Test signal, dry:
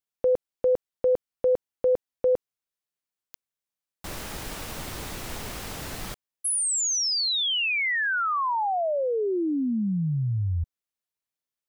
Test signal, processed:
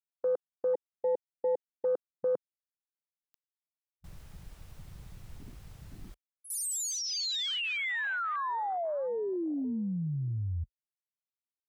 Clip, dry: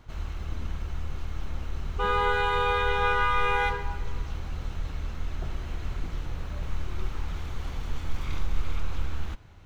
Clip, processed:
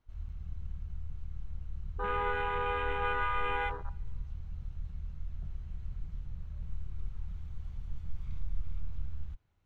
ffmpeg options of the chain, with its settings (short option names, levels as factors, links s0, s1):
-af "afwtdn=0.0398,volume=0.447"